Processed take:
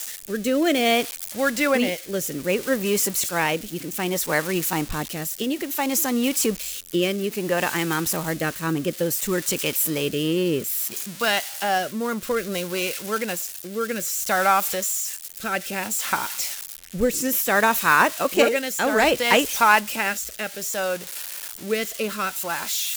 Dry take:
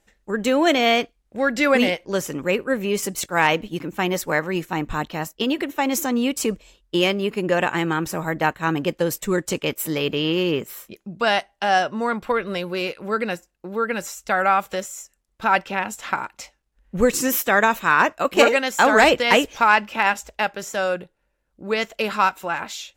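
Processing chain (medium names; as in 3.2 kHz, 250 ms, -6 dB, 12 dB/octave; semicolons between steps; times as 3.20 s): zero-crossing glitches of -18.5 dBFS; rotary cabinet horn 0.6 Hz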